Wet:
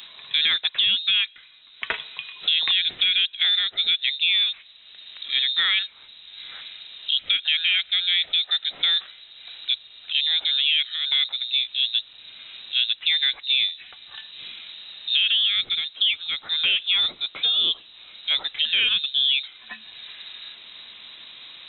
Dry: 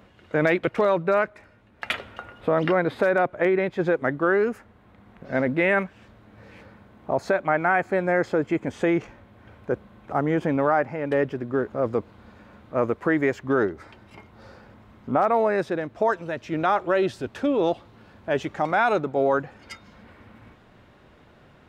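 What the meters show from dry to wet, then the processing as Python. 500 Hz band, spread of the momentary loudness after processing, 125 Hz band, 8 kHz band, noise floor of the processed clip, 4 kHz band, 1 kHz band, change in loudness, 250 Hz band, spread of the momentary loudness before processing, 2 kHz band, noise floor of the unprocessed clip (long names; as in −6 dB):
below −25 dB, 19 LU, below −25 dB, can't be measured, −49 dBFS, +27.5 dB, −18.5 dB, +3.5 dB, below −25 dB, 9 LU, +0.5 dB, −54 dBFS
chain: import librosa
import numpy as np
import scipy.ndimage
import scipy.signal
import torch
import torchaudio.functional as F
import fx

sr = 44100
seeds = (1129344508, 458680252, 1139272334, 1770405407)

y = fx.freq_invert(x, sr, carrier_hz=3900)
y = fx.band_squash(y, sr, depth_pct=40)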